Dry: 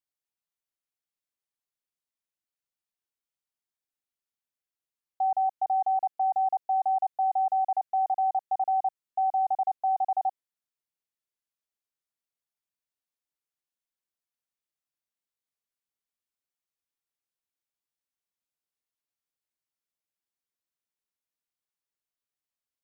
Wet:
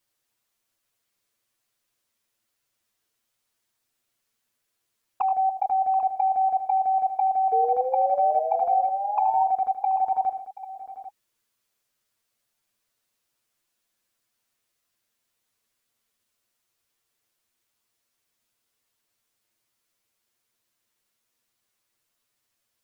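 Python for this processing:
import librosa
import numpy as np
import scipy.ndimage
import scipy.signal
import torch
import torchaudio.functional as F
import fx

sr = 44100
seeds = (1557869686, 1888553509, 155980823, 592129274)

p1 = fx.notch(x, sr, hz=830.0, q=15.0)
p2 = fx.env_flanger(p1, sr, rest_ms=8.8, full_db=-23.5)
p3 = fx.over_compress(p2, sr, threshold_db=-39.0, ratio=-1.0)
p4 = p2 + (p3 * 10.0 ** (3.0 / 20.0))
p5 = fx.spec_paint(p4, sr, seeds[0], shape='rise', start_s=7.52, length_s=1.92, low_hz=450.0, high_hz=930.0, level_db=-31.0)
p6 = p5 + fx.echo_multitap(p5, sr, ms=(77, 95, 102, 730, 792), db=(-11.5, -18.5, -18.5, -17.0, -14.5), dry=0)
y = p6 * 10.0 ** (3.0 / 20.0)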